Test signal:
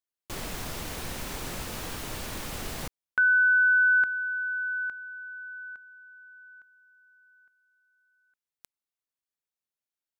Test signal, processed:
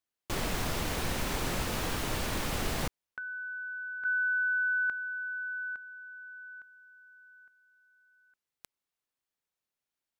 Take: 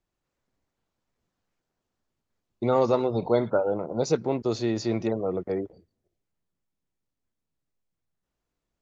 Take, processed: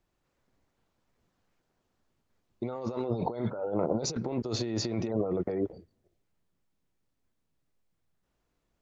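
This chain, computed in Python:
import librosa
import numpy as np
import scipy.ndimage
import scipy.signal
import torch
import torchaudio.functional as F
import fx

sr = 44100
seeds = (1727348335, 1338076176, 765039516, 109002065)

y = fx.high_shelf(x, sr, hz=5000.0, db=-5.0)
y = fx.over_compress(y, sr, threshold_db=-32.0, ratio=-1.0)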